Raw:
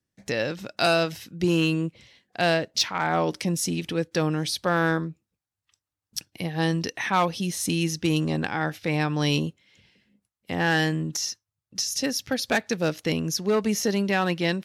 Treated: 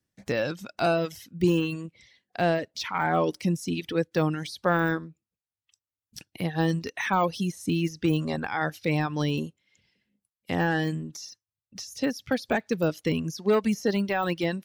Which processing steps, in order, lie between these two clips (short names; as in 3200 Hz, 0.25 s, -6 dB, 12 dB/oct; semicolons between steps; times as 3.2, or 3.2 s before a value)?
de-esser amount 95%; reverb removal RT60 1.8 s; gain +1.5 dB